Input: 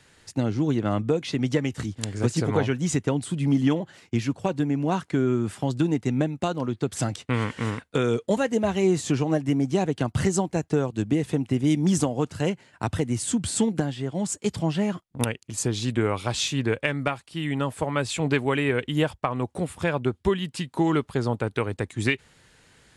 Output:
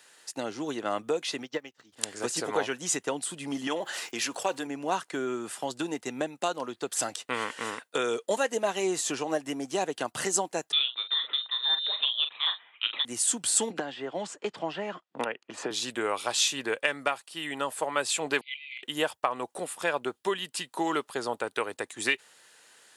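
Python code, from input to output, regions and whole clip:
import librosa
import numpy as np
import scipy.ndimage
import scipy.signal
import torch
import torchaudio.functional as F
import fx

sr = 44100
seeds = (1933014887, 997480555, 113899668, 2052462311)

y = fx.lowpass(x, sr, hz=5700.0, slope=24, at=(1.42, 1.92), fade=0.02)
y = fx.dmg_crackle(y, sr, seeds[0], per_s=230.0, level_db=-51.0, at=(1.42, 1.92), fade=0.02)
y = fx.upward_expand(y, sr, threshold_db=-33.0, expansion=2.5, at=(1.42, 1.92), fade=0.02)
y = fx.chain(y, sr, fx.low_shelf(hz=220.0, db=-11.0),
    fx.env_flatten(amount_pct=50), at=(3.67, 4.67))
y = fx.chain(y, sr, fx.highpass(hz=430.0, slope=12),
    fx.doubler(ms=42.0, db=-9.0),
    fx.freq_invert(carrier_hz=3900), at=(10.72, 13.05))
y = fx.chain(y, sr, fx.bandpass_edges(low_hz=130.0, high_hz=2600.0),
    fx.band_squash(depth_pct=100), at=(13.7, 15.71))
y = fx.chain(y, sr, fx.brickwall_bandpass(low_hz=2000.0, high_hz=4800.0),
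    fx.over_compress(threshold_db=-38.0, ratio=-0.5), at=(18.41, 18.83))
y = scipy.signal.sosfilt(scipy.signal.butter(2, 520.0, 'highpass', fs=sr, output='sos'), y)
y = fx.high_shelf(y, sr, hz=9100.0, db=11.0)
y = fx.notch(y, sr, hz=2200.0, q=14.0)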